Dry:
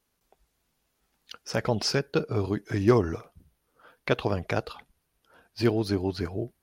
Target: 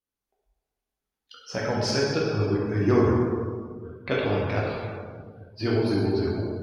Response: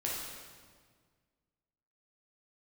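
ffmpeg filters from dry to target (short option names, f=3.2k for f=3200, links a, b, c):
-filter_complex "[1:a]atrim=start_sample=2205,asetrate=35280,aresample=44100[a];[0:a][a]afir=irnorm=-1:irlink=0,afftdn=nr=16:nf=-43,volume=-3.5dB"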